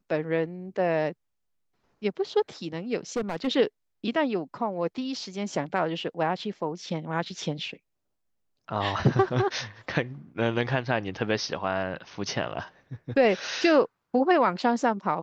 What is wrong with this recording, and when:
3.16–3.48 clipped -23.5 dBFS

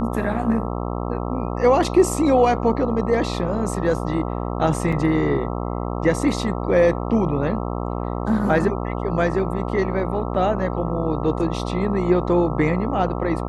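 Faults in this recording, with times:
buzz 60 Hz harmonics 22 -26 dBFS
4.92–4.93 gap 5.2 ms

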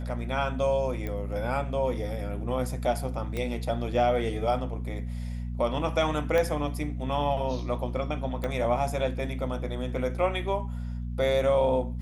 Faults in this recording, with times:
hum 60 Hz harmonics 4 -33 dBFS
1.07 pop -21 dBFS
3.37 pop -19 dBFS
6.38 pop -14 dBFS
8.44 pop -19 dBFS

